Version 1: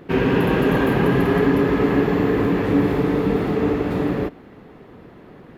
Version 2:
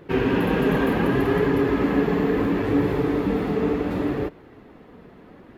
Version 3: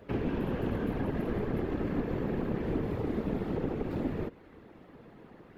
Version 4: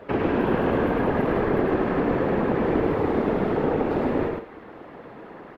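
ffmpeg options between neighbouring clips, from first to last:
-af "flanger=delay=1.9:depth=2.9:regen=-52:speed=0.69:shape=triangular,volume=1dB"
-filter_complex "[0:a]aeval=exprs='0.398*(cos(1*acos(clip(val(0)/0.398,-1,1)))-cos(1*PI/2))+0.0708*(cos(4*acos(clip(val(0)/0.398,-1,1)))-cos(4*PI/2))':c=same,afftfilt=real='hypot(re,im)*cos(2*PI*random(0))':imag='hypot(re,im)*sin(2*PI*random(1))':win_size=512:overlap=0.75,acrossover=split=250|690[a][b][c];[a]acompressor=threshold=-31dB:ratio=4[d];[b]acompressor=threshold=-36dB:ratio=4[e];[c]acompressor=threshold=-47dB:ratio=4[f];[d][e][f]amix=inputs=3:normalize=0"
-filter_complex "[0:a]equalizer=f=980:w=0.3:g=13.5,asplit=2[a][b];[b]aecho=0:1:105|154.5:0.708|0.282[c];[a][c]amix=inputs=2:normalize=0"

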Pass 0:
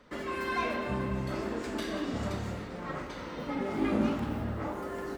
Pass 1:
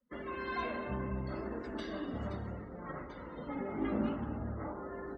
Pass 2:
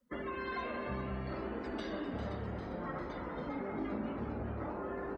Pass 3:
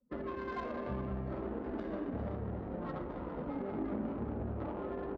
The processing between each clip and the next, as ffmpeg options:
-af "afftdn=nr=28:nf=-45,equalizer=f=63:w=4:g=5.5,bandreject=f=2.4k:w=8.5,volume=-5.5dB"
-filter_complex "[0:a]acompressor=threshold=-42dB:ratio=4,asplit=2[a][b];[b]asplit=8[c][d][e][f][g][h][i][j];[c]adelay=399,afreqshift=140,volume=-10dB[k];[d]adelay=798,afreqshift=280,volume=-14dB[l];[e]adelay=1197,afreqshift=420,volume=-18dB[m];[f]adelay=1596,afreqshift=560,volume=-22dB[n];[g]adelay=1995,afreqshift=700,volume=-26.1dB[o];[h]adelay=2394,afreqshift=840,volume=-30.1dB[p];[i]adelay=2793,afreqshift=980,volume=-34.1dB[q];[j]adelay=3192,afreqshift=1120,volume=-38.1dB[r];[k][l][m][n][o][p][q][r]amix=inputs=8:normalize=0[s];[a][s]amix=inputs=2:normalize=0,volume=5dB"
-af "adynamicsmooth=sensitivity=3:basefreq=720,volume=1.5dB"

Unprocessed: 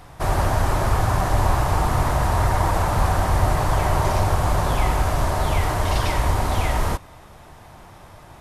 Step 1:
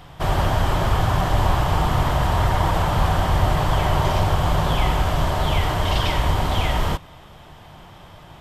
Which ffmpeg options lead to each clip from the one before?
-af "equalizer=f=160:t=o:w=0.33:g=6,equalizer=f=3.15k:t=o:w=0.33:g=10,equalizer=f=6.3k:t=o:w=0.33:g=-3,equalizer=f=10k:t=o:w=0.33:g=-10"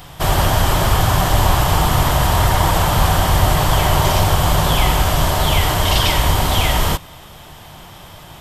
-af "crystalizer=i=2.5:c=0,volume=4dB"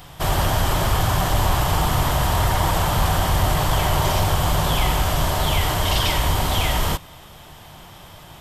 -af "asoftclip=type=tanh:threshold=-3.5dB,volume=-4dB"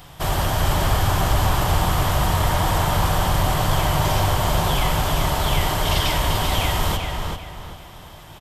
-filter_complex "[0:a]asplit=2[a][b];[b]adelay=390,lowpass=f=4.6k:p=1,volume=-4dB,asplit=2[c][d];[d]adelay=390,lowpass=f=4.6k:p=1,volume=0.34,asplit=2[e][f];[f]adelay=390,lowpass=f=4.6k:p=1,volume=0.34,asplit=2[g][h];[h]adelay=390,lowpass=f=4.6k:p=1,volume=0.34[i];[a][c][e][g][i]amix=inputs=5:normalize=0,volume=-1.5dB"

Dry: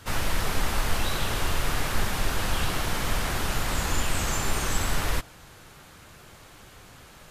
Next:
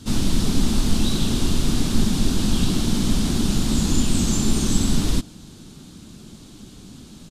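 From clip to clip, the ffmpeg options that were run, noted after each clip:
-af "firequalizer=gain_entry='entry(110,0);entry(220,13);entry(510,-9);entry(1900,-15);entry(3600,0);entry(8700,-1);entry(13000,-10)':delay=0.05:min_phase=1,volume=6dB"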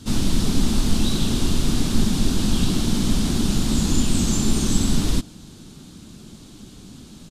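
-af anull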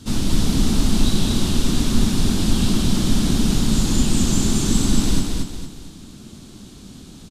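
-af "aecho=1:1:228|456|684|912|1140:0.668|0.261|0.102|0.0396|0.0155"

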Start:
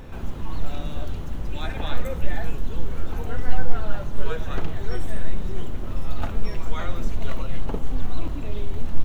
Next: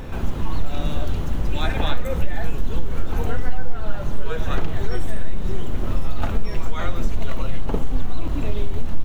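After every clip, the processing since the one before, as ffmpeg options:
-af "acompressor=threshold=-18dB:ratio=4,volume=7dB"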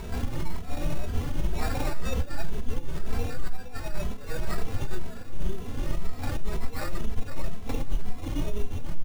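-filter_complex "[0:a]alimiter=limit=-15dB:level=0:latency=1:release=33,acrusher=samples=14:mix=1:aa=0.000001,asplit=2[a][b];[b]adelay=2.7,afreqshift=2[c];[a][c]amix=inputs=2:normalize=1"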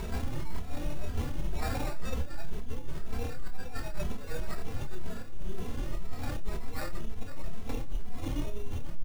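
-filter_complex "[0:a]areverse,acompressor=threshold=-27dB:ratio=6,areverse,asplit=2[a][b];[b]adelay=27,volume=-8dB[c];[a][c]amix=inputs=2:normalize=0,volume=1dB"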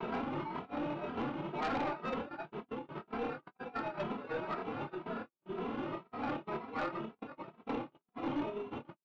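-af "highpass=f=170:w=0.5412,highpass=f=170:w=1.3066,equalizer=f=180:t=q:w=4:g=-5,equalizer=f=320:t=q:w=4:g=3,equalizer=f=900:t=q:w=4:g=6,equalizer=f=1.3k:t=q:w=4:g=6,equalizer=f=1.8k:t=q:w=4:g=-6,lowpass=f=2.9k:w=0.5412,lowpass=f=2.9k:w=1.3066,agate=range=-51dB:threshold=-45dB:ratio=16:detection=peak,aeval=exprs='0.0708*(cos(1*acos(clip(val(0)/0.0708,-1,1)))-cos(1*PI/2))+0.0251*(cos(5*acos(clip(val(0)/0.0708,-1,1)))-cos(5*PI/2))+0.00251*(cos(8*acos(clip(val(0)/0.0708,-1,1)))-cos(8*PI/2))':c=same,volume=-4.5dB"

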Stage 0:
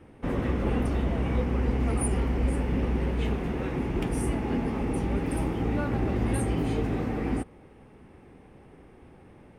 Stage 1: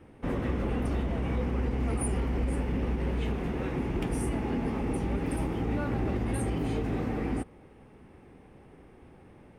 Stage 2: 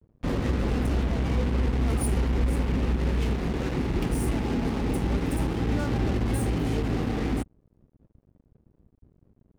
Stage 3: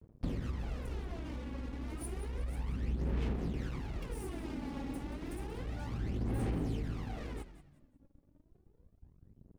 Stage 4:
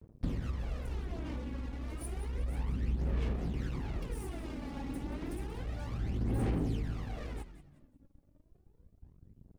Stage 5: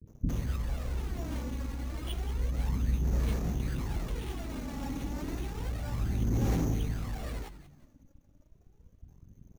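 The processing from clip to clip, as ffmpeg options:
-af "alimiter=limit=-19.5dB:level=0:latency=1:release=57,volume=-1.5dB"
-filter_complex "[0:a]acrossover=split=230[a][b];[b]acrusher=bits=5:mix=0:aa=0.5[c];[a][c]amix=inputs=2:normalize=0,lowshelf=f=230:g=4.5,aeval=exprs='sgn(val(0))*max(abs(val(0))-0.00224,0)':c=same,volume=1.5dB"
-filter_complex "[0:a]acompressor=threshold=-35dB:ratio=4,aphaser=in_gain=1:out_gain=1:delay=3.6:decay=0.6:speed=0.31:type=sinusoidal,asplit=4[a][b][c][d];[b]adelay=181,afreqshift=-100,volume=-13dB[e];[c]adelay=362,afreqshift=-200,volume=-22.9dB[f];[d]adelay=543,afreqshift=-300,volume=-32.8dB[g];[a][e][f][g]amix=inputs=4:normalize=0,volume=-5.5dB"
-af "aphaser=in_gain=1:out_gain=1:delay=1.8:decay=0.27:speed=0.77:type=sinusoidal"
-filter_complex "[0:a]acrusher=samples=7:mix=1:aa=0.000001,acrossover=split=380[a][b];[b]adelay=60[c];[a][c]amix=inputs=2:normalize=0,volume=4dB"

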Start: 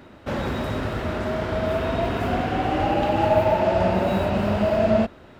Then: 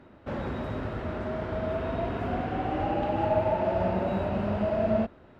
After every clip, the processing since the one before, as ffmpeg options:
-af "lowpass=f=1.8k:p=1,volume=-6dB"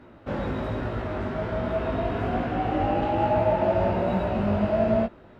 -af "flanger=delay=16.5:depth=3.6:speed=1.2,volume=6.5dB"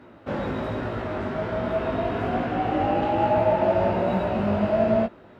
-af "highpass=f=120:p=1,volume=2dB"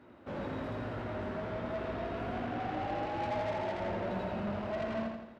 -af "asoftclip=type=tanh:threshold=-25dB,aecho=1:1:84|168|252|336|420|504:0.596|0.298|0.149|0.0745|0.0372|0.0186,volume=-9dB"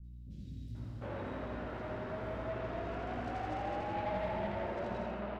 -filter_complex "[0:a]aeval=exprs='val(0)+0.00562*(sin(2*PI*60*n/s)+sin(2*PI*2*60*n/s)/2+sin(2*PI*3*60*n/s)/3+sin(2*PI*4*60*n/s)/4+sin(2*PI*5*60*n/s)/5)':c=same,acrossover=split=210|4300[a][b][c];[c]adelay=40[d];[b]adelay=750[e];[a][e][d]amix=inputs=3:normalize=0,volume=-2dB"

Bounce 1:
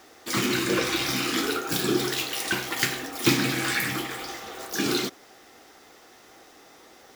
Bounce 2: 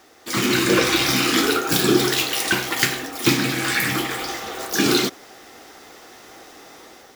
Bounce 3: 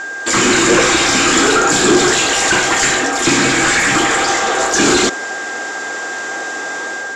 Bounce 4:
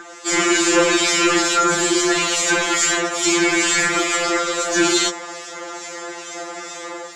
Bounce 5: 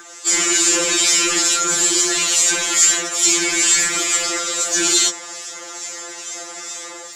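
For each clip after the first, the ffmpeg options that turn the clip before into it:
-af "dynaudnorm=f=170:g=5:m=8dB"
-filter_complex "[0:a]asplit=2[a][b];[b]highpass=f=720:p=1,volume=29dB,asoftclip=type=tanh:threshold=-1dB[c];[a][c]amix=inputs=2:normalize=0,lowpass=f=1.1k:p=1,volume=-6dB,aeval=exprs='val(0)+0.0708*sin(2*PI*1600*n/s)':c=same,lowpass=f=7.3k:t=q:w=7.8"
-filter_complex "[0:a]acrossover=split=220[a][b];[a]alimiter=level_in=1.5dB:limit=-24dB:level=0:latency=1,volume=-1.5dB[c];[c][b]amix=inputs=2:normalize=0,acrossover=split=2400[d][e];[d]aeval=exprs='val(0)*(1-0.5/2+0.5/2*cos(2*PI*2.3*n/s))':c=same[f];[e]aeval=exprs='val(0)*(1-0.5/2-0.5/2*cos(2*PI*2.3*n/s))':c=same[g];[f][g]amix=inputs=2:normalize=0,afftfilt=real='re*2.83*eq(mod(b,8),0)':imag='im*2.83*eq(mod(b,8),0)':win_size=2048:overlap=0.75"
-filter_complex "[0:a]acrossover=split=470|2100[a][b][c];[b]asoftclip=type=tanh:threshold=-18.5dB[d];[a][d][c]amix=inputs=3:normalize=0,crystalizer=i=4.5:c=0,volume=-7dB"

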